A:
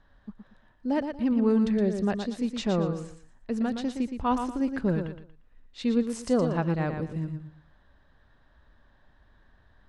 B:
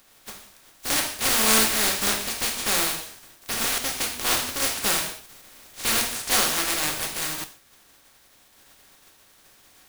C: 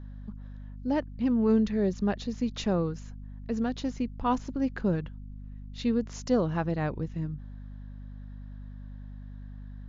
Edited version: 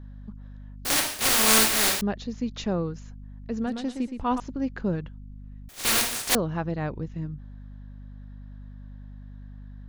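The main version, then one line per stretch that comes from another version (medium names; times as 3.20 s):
C
0.85–2.01 s: from B
3.67–4.40 s: from A
5.69–6.35 s: from B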